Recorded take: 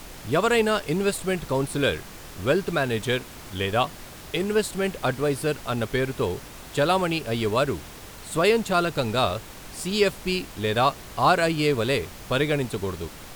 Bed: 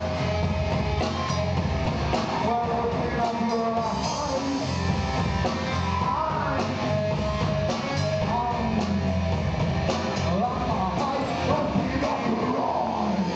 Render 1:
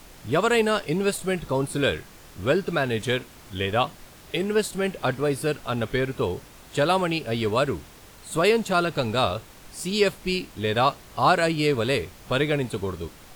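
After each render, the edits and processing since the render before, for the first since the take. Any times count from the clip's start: noise print and reduce 6 dB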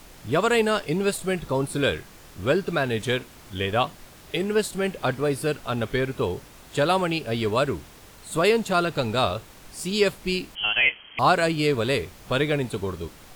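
10.55–11.19 s: frequency inversion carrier 3.2 kHz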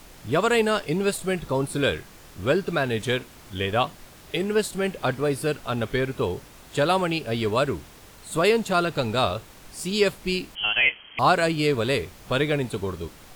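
no audible change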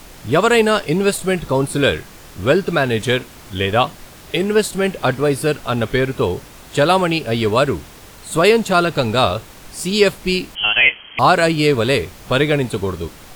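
trim +7.5 dB; peak limiter -1 dBFS, peak gain reduction 2 dB

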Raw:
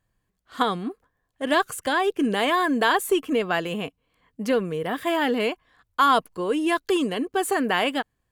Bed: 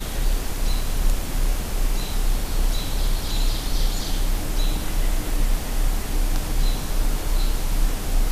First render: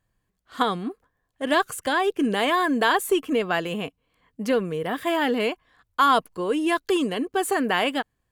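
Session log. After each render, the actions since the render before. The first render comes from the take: no audible change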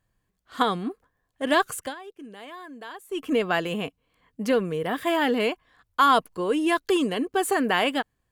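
1.78–3.27 s: dip -19.5 dB, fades 0.17 s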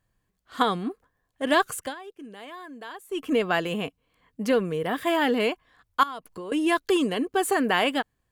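6.03–6.52 s: compression 8:1, threshold -33 dBFS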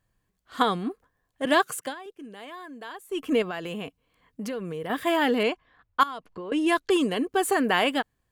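1.45–2.06 s: high-pass 130 Hz 24 dB/octave; 3.42–4.90 s: compression 4:1, threshold -30 dBFS; 5.43–6.93 s: level-controlled noise filter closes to 2.1 kHz, open at -18.5 dBFS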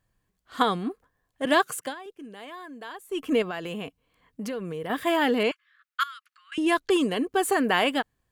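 5.51–6.58 s: steep high-pass 1.2 kHz 96 dB/octave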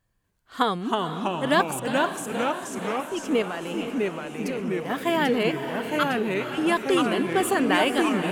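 ever faster or slower copies 244 ms, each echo -2 st, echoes 3; echo that smears into a reverb 485 ms, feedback 53%, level -10 dB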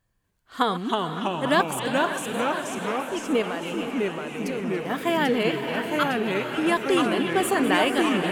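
chunks repeated in reverse 688 ms, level -13.5 dB; repeats whose band climbs or falls 282 ms, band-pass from 3 kHz, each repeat -0.7 oct, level -6 dB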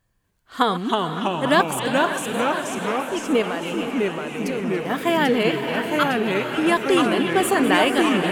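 trim +3.5 dB

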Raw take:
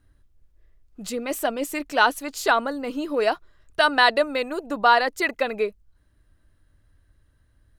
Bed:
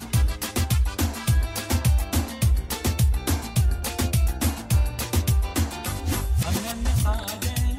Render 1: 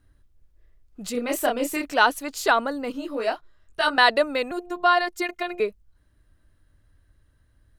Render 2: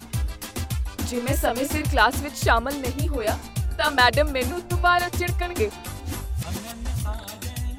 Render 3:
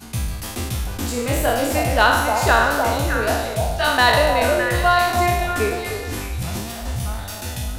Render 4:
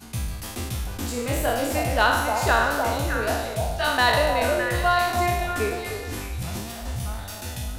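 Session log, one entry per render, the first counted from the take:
1.12–1.94 s: doubling 29 ms -3 dB; 2.92–3.98 s: detune thickener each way 36 cents; 4.51–5.60 s: robot voice 353 Hz
add bed -5.5 dB
spectral sustain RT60 1.03 s; on a send: repeats whose band climbs or falls 306 ms, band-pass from 670 Hz, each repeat 1.4 oct, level -2 dB
trim -4.5 dB

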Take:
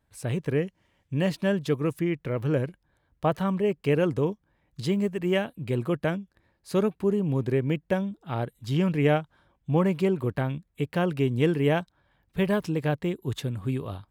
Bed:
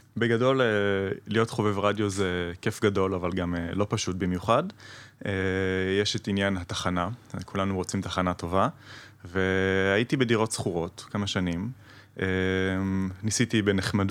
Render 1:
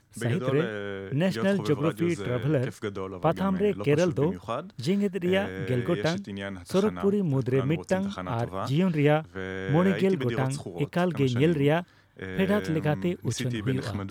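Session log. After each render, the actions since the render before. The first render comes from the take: add bed -9 dB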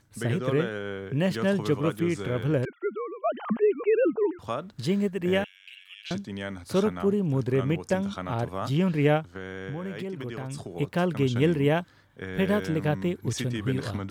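2.65–4.39 s: formants replaced by sine waves; 5.44–6.11 s: ladder high-pass 2.6 kHz, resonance 80%; 9.33–10.75 s: compression, threshold -31 dBFS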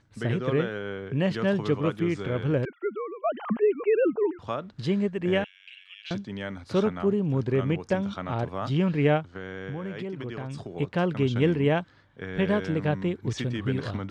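low-pass 4.7 kHz 12 dB/octave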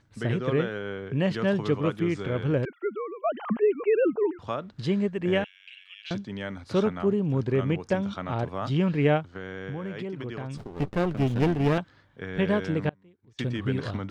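10.57–11.78 s: sliding maximum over 33 samples; 12.89–13.39 s: inverted gate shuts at -34 dBFS, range -29 dB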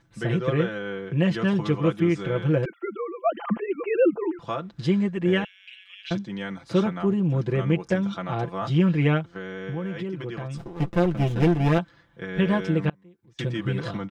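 band-stop 4.4 kHz, Q 20; comb 5.9 ms, depth 82%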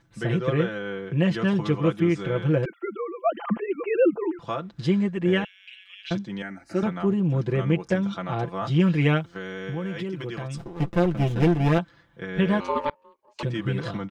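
6.42–6.83 s: static phaser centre 700 Hz, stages 8; 8.79–10.56 s: treble shelf 3.3 kHz +7.5 dB; 12.60–13.43 s: ring modulator 730 Hz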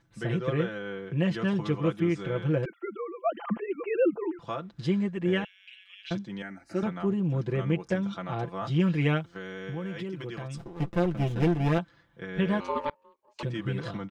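trim -4.5 dB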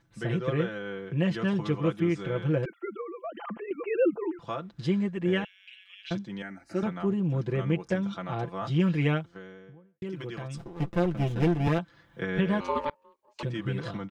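3.01–3.71 s: compression 4:1, threshold -34 dBFS; 8.97–10.02 s: studio fade out; 11.67–12.85 s: three bands compressed up and down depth 70%

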